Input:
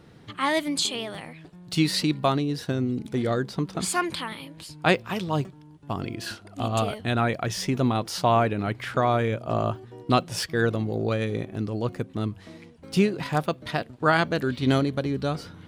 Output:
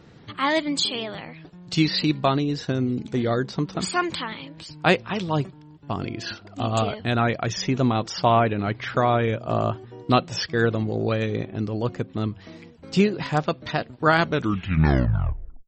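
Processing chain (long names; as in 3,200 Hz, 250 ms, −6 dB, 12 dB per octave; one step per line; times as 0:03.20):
turntable brake at the end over 1.46 s
level +2.5 dB
MP3 32 kbit/s 48,000 Hz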